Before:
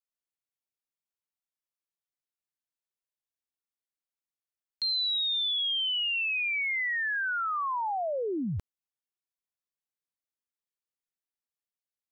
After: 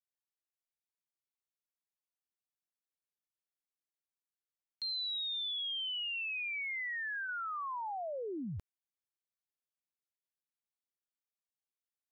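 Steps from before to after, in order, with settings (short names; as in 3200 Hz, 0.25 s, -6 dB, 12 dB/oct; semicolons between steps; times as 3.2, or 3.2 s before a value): 6.68–7.3 de-hum 117.5 Hz, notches 13; gain -8.5 dB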